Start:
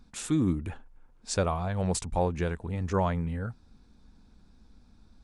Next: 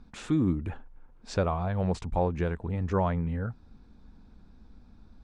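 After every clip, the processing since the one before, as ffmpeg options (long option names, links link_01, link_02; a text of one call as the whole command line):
ffmpeg -i in.wav -filter_complex "[0:a]acrossover=split=6100[link_01][link_02];[link_02]acompressor=threshold=-45dB:ratio=4:attack=1:release=60[link_03];[link_01][link_03]amix=inputs=2:normalize=0,aemphasis=mode=reproduction:type=75fm,asplit=2[link_04][link_05];[link_05]acompressor=threshold=-35dB:ratio=6,volume=-2dB[link_06];[link_04][link_06]amix=inputs=2:normalize=0,volume=-2dB" out.wav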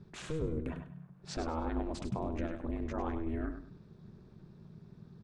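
ffmpeg -i in.wav -filter_complex "[0:a]alimiter=level_in=1.5dB:limit=-24dB:level=0:latency=1:release=51,volume=-1.5dB,aeval=exprs='val(0)*sin(2*PI*160*n/s)':channel_layout=same,asplit=2[link_01][link_02];[link_02]aecho=0:1:100|200|300:0.355|0.0923|0.024[link_03];[link_01][link_03]amix=inputs=2:normalize=0" out.wav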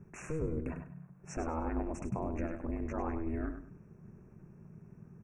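ffmpeg -i in.wav -af "asuperstop=centerf=3900:order=20:qfactor=1.4" out.wav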